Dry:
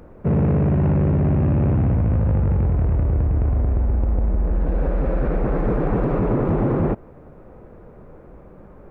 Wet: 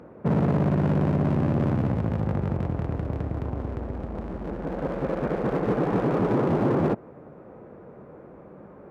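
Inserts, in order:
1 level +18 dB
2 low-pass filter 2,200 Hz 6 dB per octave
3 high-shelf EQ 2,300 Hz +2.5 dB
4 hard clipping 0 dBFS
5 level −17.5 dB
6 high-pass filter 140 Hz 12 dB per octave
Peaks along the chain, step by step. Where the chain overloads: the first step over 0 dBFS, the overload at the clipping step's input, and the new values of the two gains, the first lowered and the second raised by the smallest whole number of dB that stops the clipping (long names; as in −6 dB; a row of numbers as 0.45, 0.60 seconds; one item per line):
+9.5, +9.5, +9.5, 0.0, −17.5, −11.5 dBFS
step 1, 9.5 dB
step 1 +8 dB, step 5 −7.5 dB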